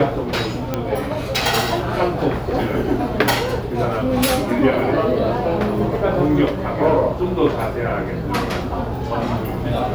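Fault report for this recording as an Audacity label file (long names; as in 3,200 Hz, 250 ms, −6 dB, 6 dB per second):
0.740000	0.740000	click −7 dBFS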